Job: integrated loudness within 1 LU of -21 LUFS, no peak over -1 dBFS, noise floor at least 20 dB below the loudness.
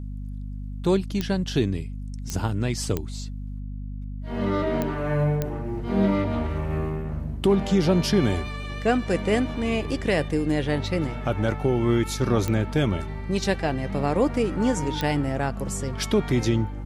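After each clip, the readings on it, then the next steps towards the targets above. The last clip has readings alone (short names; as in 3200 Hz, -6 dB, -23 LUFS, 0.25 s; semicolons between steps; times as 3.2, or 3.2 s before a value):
clicks 7; hum 50 Hz; harmonics up to 250 Hz; hum level -30 dBFS; loudness -25.0 LUFS; peak -9.5 dBFS; loudness target -21.0 LUFS
-> de-click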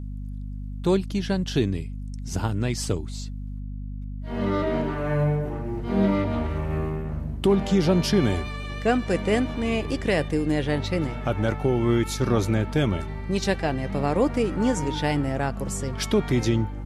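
clicks 0; hum 50 Hz; harmonics up to 250 Hz; hum level -30 dBFS
-> notches 50/100/150/200/250 Hz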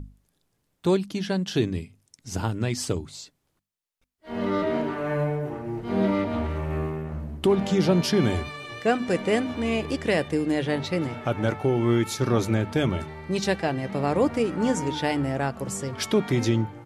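hum none; loudness -26.0 LUFS; peak -9.5 dBFS; loudness target -21.0 LUFS
-> gain +5 dB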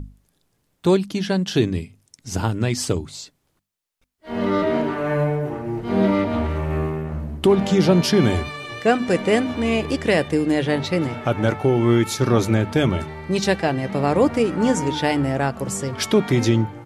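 loudness -21.0 LUFS; peak -4.5 dBFS; noise floor -69 dBFS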